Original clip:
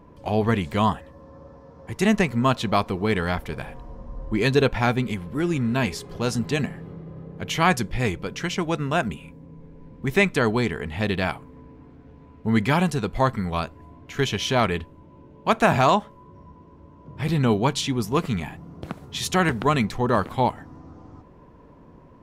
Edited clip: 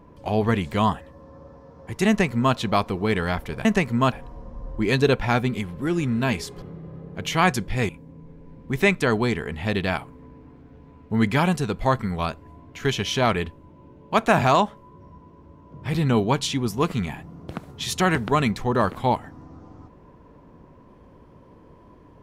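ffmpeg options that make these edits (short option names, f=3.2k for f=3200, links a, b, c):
-filter_complex "[0:a]asplit=5[a][b][c][d][e];[a]atrim=end=3.652[f];[b]atrim=start=2.078:end=2.552[g];[c]atrim=start=3.648:end=6.152[h];[d]atrim=start=6.848:end=8.122[i];[e]atrim=start=9.228[j];[f][g]acrossfade=d=0.004:c1=hsin:c2=hsin[k];[k][h]acrossfade=d=0.004:c1=hsin:c2=hsin[l];[l][i]acrossfade=d=0.004:c1=hsin:c2=hsin[m];[m][j]acrossfade=d=0.004:c1=hsin:c2=hsin"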